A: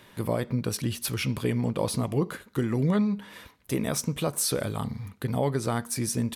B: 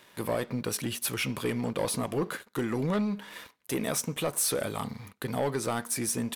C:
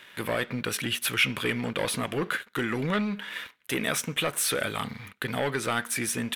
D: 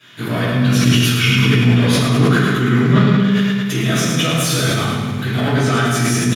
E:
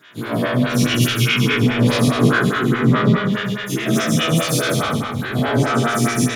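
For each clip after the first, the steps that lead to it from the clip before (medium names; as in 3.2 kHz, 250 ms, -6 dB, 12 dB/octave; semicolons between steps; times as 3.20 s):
high-pass 390 Hz 6 dB/octave; dynamic bell 4.7 kHz, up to -5 dB, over -46 dBFS, Q 1.9; waveshaping leveller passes 2; trim -4.5 dB
high-order bell 2.2 kHz +9.5 dB
feedback delay 107 ms, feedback 57%, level -5 dB; reverberation RT60 1.1 s, pre-delay 3 ms, DRR -16 dB; decay stretcher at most 20 dB/s; trim -9 dB
every event in the spectrogram widened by 60 ms; plate-style reverb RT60 0.78 s, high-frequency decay 0.75×, pre-delay 90 ms, DRR 6 dB; lamp-driven phase shifter 4.8 Hz; trim -2 dB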